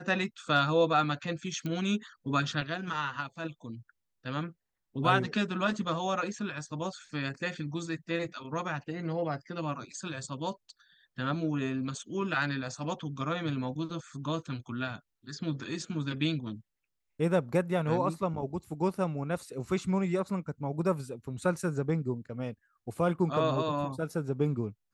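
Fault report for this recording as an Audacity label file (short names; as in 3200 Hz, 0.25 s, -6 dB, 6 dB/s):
1.660000	1.660000	pop -23 dBFS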